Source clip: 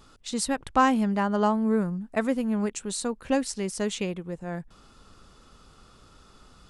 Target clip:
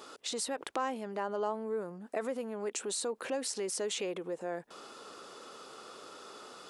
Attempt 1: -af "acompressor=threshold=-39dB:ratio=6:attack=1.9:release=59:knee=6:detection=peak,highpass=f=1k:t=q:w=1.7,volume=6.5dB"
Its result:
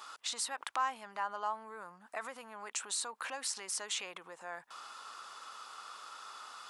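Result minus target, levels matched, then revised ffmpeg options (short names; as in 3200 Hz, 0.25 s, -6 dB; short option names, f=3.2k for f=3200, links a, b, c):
500 Hz band -10.0 dB
-af "acompressor=threshold=-39dB:ratio=6:attack=1.9:release=59:knee=6:detection=peak,highpass=f=430:t=q:w=1.7,volume=6.5dB"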